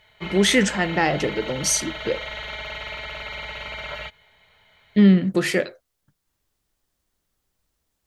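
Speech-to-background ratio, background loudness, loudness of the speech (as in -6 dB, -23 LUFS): 12.0 dB, -32.5 LUFS, -20.5 LUFS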